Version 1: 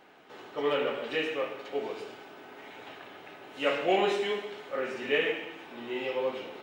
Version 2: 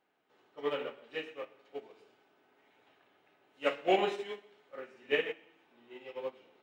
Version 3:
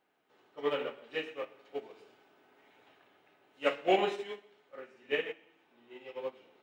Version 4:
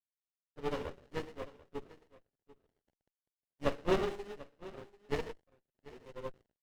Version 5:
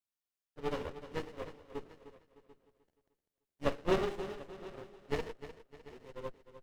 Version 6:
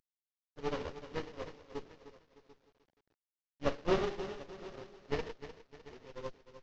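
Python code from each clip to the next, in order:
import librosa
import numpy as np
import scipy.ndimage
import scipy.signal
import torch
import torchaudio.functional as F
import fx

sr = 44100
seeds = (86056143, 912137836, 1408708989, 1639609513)

y1 = fx.upward_expand(x, sr, threshold_db=-36.0, expansion=2.5)
y2 = fx.rider(y1, sr, range_db=4, speed_s=2.0)
y3 = np.sign(y2) * np.maximum(np.abs(y2) - 10.0 ** (-54.5 / 20.0), 0.0)
y3 = y3 + 10.0 ** (-18.5 / 20.0) * np.pad(y3, (int(741 * sr / 1000.0), 0))[:len(y3)]
y3 = fx.running_max(y3, sr, window=33)
y3 = F.gain(torch.from_numpy(y3), -1.5).numpy()
y4 = fx.echo_feedback(y3, sr, ms=304, feedback_pct=41, wet_db=-13.0)
y5 = fx.cvsd(y4, sr, bps=32000)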